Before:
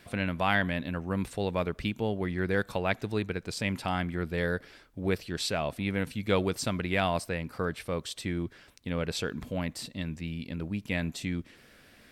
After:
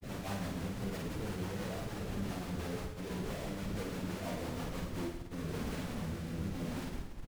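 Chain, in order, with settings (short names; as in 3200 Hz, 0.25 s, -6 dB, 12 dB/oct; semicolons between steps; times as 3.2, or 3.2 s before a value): LPF 1000 Hz 12 dB/oct; de-hum 61.96 Hz, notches 23; dynamic EQ 130 Hz, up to +4 dB, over -51 dBFS, Q 4.4; compressor 16:1, threshold -39 dBFS, peak gain reduction 17 dB; Schmitt trigger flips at -52.5 dBFS; plain phase-vocoder stretch 0.6×; rotary speaker horn 6 Hz, later 0.8 Hz, at 4.73; on a send: reverse bouncing-ball echo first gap 50 ms, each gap 1.2×, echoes 5; on the sum: gain +9 dB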